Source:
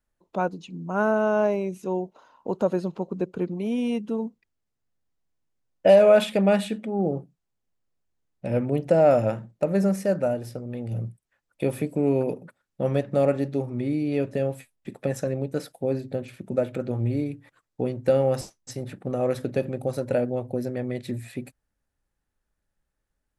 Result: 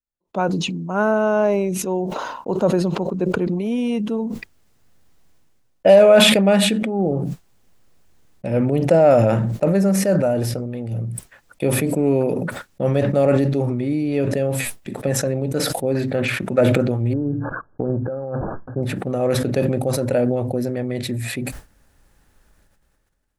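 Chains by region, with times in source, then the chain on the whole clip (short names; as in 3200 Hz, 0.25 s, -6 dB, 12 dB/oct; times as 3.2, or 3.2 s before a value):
15.95–16.61 expander -48 dBFS + bell 1700 Hz +11 dB 1.9 oct
17.13–18.83 brick-wall FIR low-pass 1700 Hz + negative-ratio compressor -29 dBFS
whole clip: gate with hold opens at -42 dBFS; sustainer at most 26 dB/s; gain +4 dB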